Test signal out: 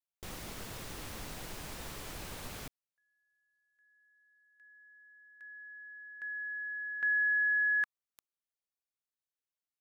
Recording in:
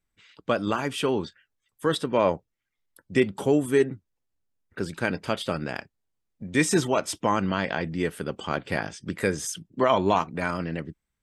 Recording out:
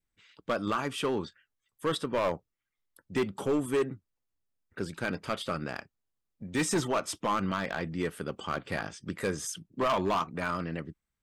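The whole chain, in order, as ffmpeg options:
ffmpeg -i in.wav -af "adynamicequalizer=threshold=0.00562:dfrequency=1200:dqfactor=4.5:tfrequency=1200:tqfactor=4.5:attack=5:release=100:ratio=0.375:range=3.5:mode=boostabove:tftype=bell,volume=18dB,asoftclip=hard,volume=-18dB,volume=-4.5dB" out.wav

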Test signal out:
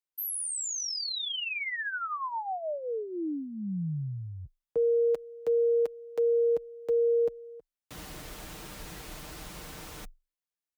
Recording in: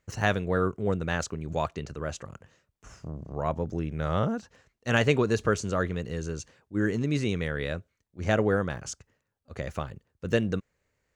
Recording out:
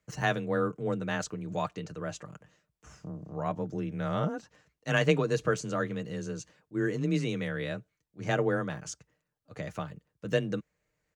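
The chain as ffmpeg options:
ffmpeg -i in.wav -af "aecho=1:1:6.8:0.47,afreqshift=21,volume=-4dB" out.wav

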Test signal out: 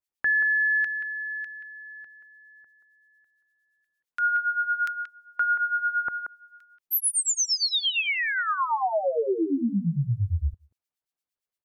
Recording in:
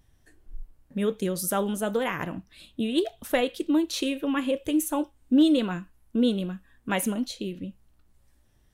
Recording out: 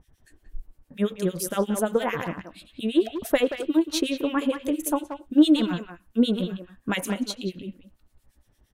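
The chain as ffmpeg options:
ffmpeg -i in.wav -filter_complex "[0:a]acrossover=split=1700[link_01][link_02];[link_01]aeval=exprs='val(0)*(1-1/2+1/2*cos(2*PI*8.7*n/s))':channel_layout=same[link_03];[link_02]aeval=exprs='val(0)*(1-1/2-1/2*cos(2*PI*8.7*n/s))':channel_layout=same[link_04];[link_03][link_04]amix=inputs=2:normalize=0,asplit=2[link_05][link_06];[link_06]adelay=180,highpass=300,lowpass=3400,asoftclip=type=hard:threshold=-23dB,volume=-8dB[link_07];[link_05][link_07]amix=inputs=2:normalize=0,volume=5.5dB" out.wav

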